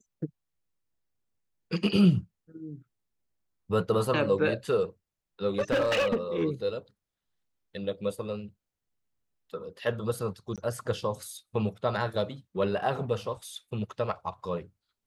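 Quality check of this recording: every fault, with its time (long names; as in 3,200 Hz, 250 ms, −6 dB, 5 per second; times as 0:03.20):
0:05.59–0:06.42: clipping −21.5 dBFS
0:10.56–0:10.58: drop-out 17 ms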